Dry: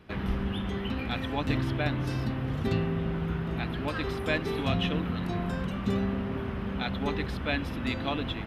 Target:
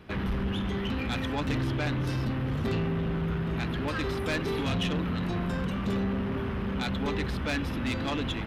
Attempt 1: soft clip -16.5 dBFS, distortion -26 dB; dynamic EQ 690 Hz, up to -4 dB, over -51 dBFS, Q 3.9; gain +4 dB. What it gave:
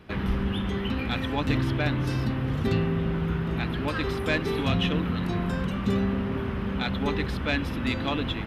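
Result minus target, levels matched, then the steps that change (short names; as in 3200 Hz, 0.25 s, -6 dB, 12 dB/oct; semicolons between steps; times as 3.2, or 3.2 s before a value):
soft clip: distortion -14 dB
change: soft clip -28 dBFS, distortion -11 dB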